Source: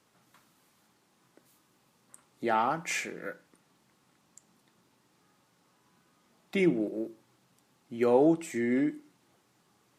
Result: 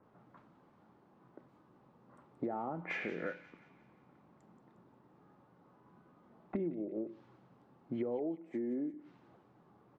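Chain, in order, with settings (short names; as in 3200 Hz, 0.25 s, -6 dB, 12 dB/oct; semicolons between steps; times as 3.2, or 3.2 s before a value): bands offset in time lows, highs 30 ms, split 2100 Hz; treble ducked by the level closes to 660 Hz, closed at -27.5 dBFS; 8.19–8.94 HPF 210 Hz 12 dB/oct; low-pass opened by the level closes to 1100 Hz, open at -28.5 dBFS; compressor 8:1, threshold -41 dBFS, peak gain reduction 20.5 dB; thin delay 0.178 s, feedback 51%, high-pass 2900 Hz, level -8.5 dB; gain +6 dB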